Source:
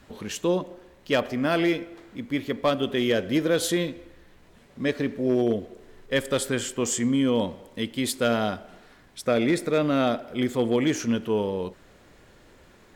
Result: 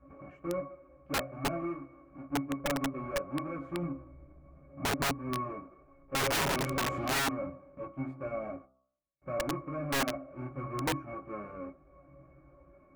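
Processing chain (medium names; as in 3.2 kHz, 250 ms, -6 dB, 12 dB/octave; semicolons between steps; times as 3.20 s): square wave that keeps the level; FFT filter 190 Hz 0 dB, 880 Hz +10 dB, 2.1 kHz +5 dB, 3.6 kHz -18 dB, 6.9 kHz -11 dB; in parallel at +0.5 dB: compression 6:1, threshold -34 dBFS, peak gain reduction 23.5 dB; 3.82–5.11 s: on the sum: bass shelf 490 Hz +6.5 dB; 8.49–9.22 s: gate -27 dBFS, range -38 dB; de-hum 65.6 Hz, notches 22; chorus voices 6, 0.17 Hz, delay 19 ms, depth 4.2 ms; 6.20–7.18 s: power-law waveshaper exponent 0.35; pitch-class resonator C#, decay 0.11 s; integer overflow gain 17.5 dB; trim -7 dB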